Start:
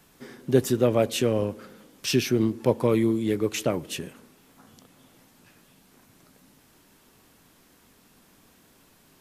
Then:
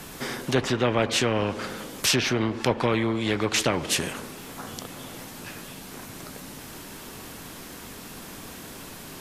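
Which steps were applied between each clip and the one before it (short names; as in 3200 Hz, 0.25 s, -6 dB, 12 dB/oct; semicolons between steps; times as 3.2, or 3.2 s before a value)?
treble ducked by the level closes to 2200 Hz, closed at -18 dBFS; spectral compressor 2:1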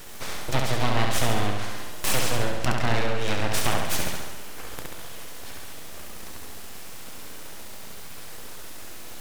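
full-wave rectifier; on a send: flutter echo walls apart 11.8 m, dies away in 0.96 s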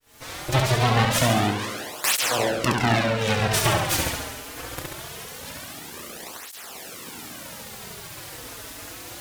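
opening faded in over 0.59 s; tape flanging out of phase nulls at 0.23 Hz, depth 5.7 ms; gain +7.5 dB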